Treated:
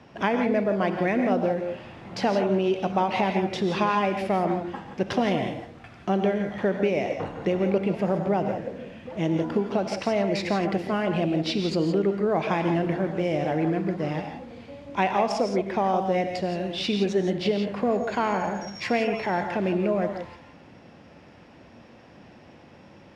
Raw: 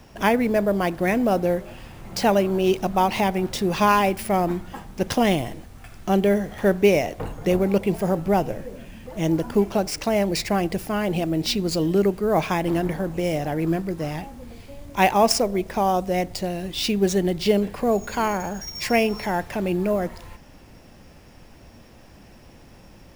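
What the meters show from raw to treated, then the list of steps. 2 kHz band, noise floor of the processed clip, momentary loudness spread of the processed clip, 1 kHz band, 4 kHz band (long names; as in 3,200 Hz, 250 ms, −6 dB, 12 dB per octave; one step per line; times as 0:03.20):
−3.0 dB, −50 dBFS, 8 LU, −3.0 dB, −5.0 dB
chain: downward compressor, threshold −20 dBFS, peak gain reduction 8.5 dB
band-pass filter 130–3,500 Hz
reverb whose tail is shaped and stops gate 190 ms rising, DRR 5.5 dB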